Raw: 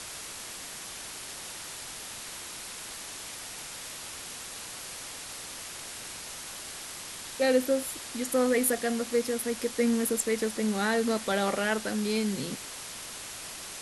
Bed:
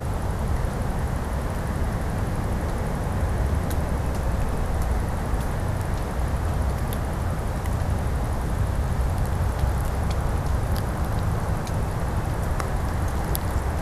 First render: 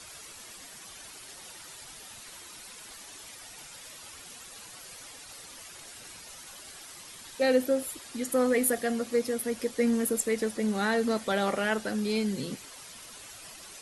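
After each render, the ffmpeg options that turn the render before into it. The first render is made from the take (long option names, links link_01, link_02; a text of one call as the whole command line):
ffmpeg -i in.wav -af "afftdn=noise_reduction=10:noise_floor=-42" out.wav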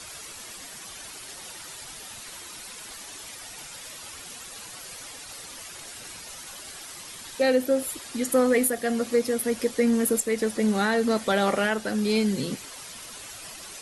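ffmpeg -i in.wav -af "alimiter=limit=-17.5dB:level=0:latency=1:release=375,acontrast=36" out.wav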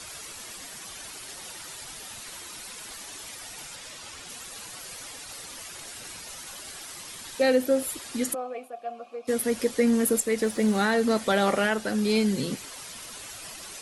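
ffmpeg -i in.wav -filter_complex "[0:a]asettb=1/sr,asplit=3[link_01][link_02][link_03];[link_01]atrim=end=3.754[link_04];[link_02]atrim=start=3.75:end=4.29,asetpts=PTS-STARTPTS,afade=type=in:duration=0.004:curve=qsin,afade=type=out:start_time=0.536:duration=0.004:curve=qsin,lowpass=8500[link_05];[link_03]atrim=start=4.286[link_06];[link_04][link_05]acrossfade=duration=0.004:curve1=hsin:curve2=qsin[link_07];[link_07][link_06]acrossfade=duration=0.004:curve1=qsin:curve2=hsin,asplit=3[link_08][link_09][link_10];[link_08]afade=type=out:start_time=8.33:duration=0.02[link_11];[link_09]asplit=3[link_12][link_13][link_14];[link_12]bandpass=frequency=730:width_type=q:width=8,volume=0dB[link_15];[link_13]bandpass=frequency=1090:width_type=q:width=8,volume=-6dB[link_16];[link_14]bandpass=frequency=2440:width_type=q:width=8,volume=-9dB[link_17];[link_15][link_16][link_17]amix=inputs=3:normalize=0,afade=type=in:start_time=8.33:duration=0.02,afade=type=out:start_time=9.27:duration=0.02[link_18];[link_10]afade=type=in:start_time=9.27:duration=0.02[link_19];[link_11][link_18][link_19]amix=inputs=3:normalize=0,asettb=1/sr,asplit=3[link_20][link_21][link_22];[link_20]atrim=end=10.434[link_23];[link_21]atrim=start=10.43:end=10.94,asetpts=PTS-STARTPTS,afade=type=in:duration=0.004:curve=qsin,afade=type=out:start_time=0.506:duration=0.004:curve=qsin,acrusher=bits=8:mix=0:aa=0.5[link_24];[link_22]atrim=start=10.936[link_25];[link_23][link_24]acrossfade=duration=0.004:curve1=hsin:curve2=qsin[link_26];[link_26][link_25]acrossfade=duration=0.004:curve1=qsin:curve2=hsin" out.wav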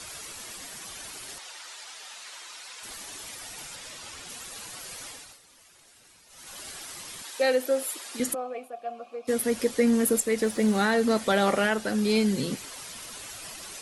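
ffmpeg -i in.wav -filter_complex "[0:a]asettb=1/sr,asplit=3[link_01][link_02][link_03];[link_01]atrim=end=1.384[link_04];[link_02]atrim=start=1.38:end=2.83,asetpts=PTS-STARTPTS,afade=type=in:duration=0.004:curve=qsin,afade=type=out:start_time=1.446:duration=0.004:curve=qsin,highpass=690,lowpass=7100[link_05];[link_03]atrim=start=2.826[link_06];[link_04][link_05]acrossfade=duration=0.004:curve1=hsin:curve2=qsin[link_07];[link_07][link_06]acrossfade=duration=0.004:curve1=qsin:curve2=hsin,asettb=1/sr,asplit=3[link_08][link_09][link_10];[link_08]atrim=end=7.224[link_11];[link_09]atrim=start=7.22:end=8.2,asetpts=PTS-STARTPTS,afade=type=in:duration=0.004:curve=qsin,afade=type=out:start_time=0.976:duration=0.004:curve=qsin,highpass=420[link_12];[link_10]atrim=start=8.196[link_13];[link_11][link_12]acrossfade=duration=0.004:curve1=hsin:curve2=qsin[link_14];[link_14][link_13]acrossfade=duration=0.004:curve1=qsin:curve2=hsin,asplit=3[link_15][link_16][link_17];[link_15]atrim=end=5.39,asetpts=PTS-STARTPTS,afade=type=out:start_time=5.07:duration=0.32:silence=0.16788[link_18];[link_16]atrim=start=5.39:end=6.29,asetpts=PTS-STARTPTS,volume=-15.5dB[link_19];[link_17]atrim=start=6.29,asetpts=PTS-STARTPTS,afade=type=in:duration=0.32:silence=0.16788[link_20];[link_18][link_19][link_20]concat=n=3:v=0:a=1" out.wav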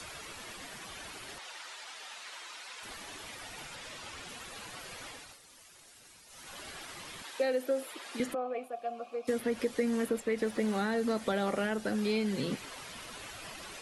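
ffmpeg -i in.wav -filter_complex "[0:a]acrossover=split=500|3700[link_01][link_02][link_03];[link_01]acompressor=threshold=-32dB:ratio=4[link_04];[link_02]acompressor=threshold=-35dB:ratio=4[link_05];[link_03]acompressor=threshold=-53dB:ratio=4[link_06];[link_04][link_05][link_06]amix=inputs=3:normalize=0" out.wav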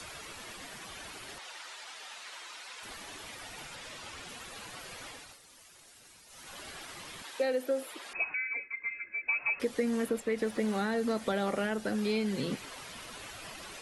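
ffmpeg -i in.wav -filter_complex "[0:a]asettb=1/sr,asplit=3[link_01][link_02][link_03];[link_01]atrim=end=8.134[link_04];[link_02]atrim=start=8.13:end=9.6,asetpts=PTS-STARTPTS,afade=type=in:duration=0.004:curve=qsin,afade=type=out:start_time=1.466:duration=0.004:curve=qsin,lowpass=frequency=2400:width_type=q:width=0.5098,lowpass=frequency=2400:width_type=q:width=0.6013,lowpass=frequency=2400:width_type=q:width=0.9,lowpass=frequency=2400:width_type=q:width=2.563,afreqshift=-2800[link_05];[link_03]atrim=start=9.596[link_06];[link_04][link_05]acrossfade=duration=0.004:curve1=hsin:curve2=qsin[link_07];[link_07][link_06]acrossfade=duration=0.004:curve1=qsin:curve2=hsin" out.wav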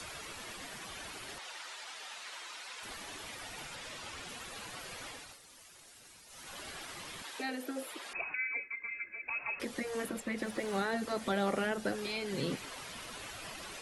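ffmpeg -i in.wav -af "afftfilt=real='re*lt(hypot(re,im),0.224)':imag='im*lt(hypot(re,im),0.224)':win_size=1024:overlap=0.75" out.wav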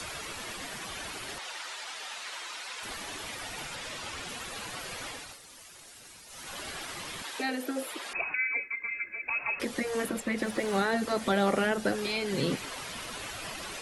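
ffmpeg -i in.wav -af "volume=6dB" out.wav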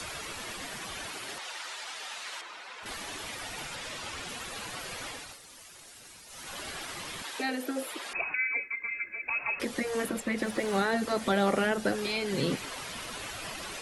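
ffmpeg -i in.wav -filter_complex "[0:a]asettb=1/sr,asplit=3[link_01][link_02][link_03];[link_01]atrim=end=1.064[link_04];[link_02]atrim=start=1.06:end=1.64,asetpts=PTS-STARTPTS,afade=type=in:duration=0.004:curve=qsin,afade=type=out:start_time=0.576:duration=0.004:curve=qsin,highpass=frequency=170:poles=1[link_05];[link_03]atrim=start=1.636[link_06];[link_04][link_05]acrossfade=duration=0.004:curve1=hsin:curve2=qsin[link_07];[link_07][link_06]acrossfade=duration=0.004:curve1=qsin:curve2=hsin,asettb=1/sr,asplit=3[link_08][link_09][link_10];[link_08]atrim=end=2.414[link_11];[link_09]atrim=start=2.41:end=2.86,asetpts=PTS-STARTPTS,afade=type=in:duration=0.004:curve=qsin,afade=type=out:start_time=0.446:duration=0.004:curve=qsin,lowpass=frequency=1800:poles=1[link_12];[link_10]atrim=start=2.856[link_13];[link_11][link_12]acrossfade=duration=0.004:curve1=hsin:curve2=qsin[link_14];[link_14][link_13]acrossfade=duration=0.004:curve1=qsin:curve2=hsin" out.wav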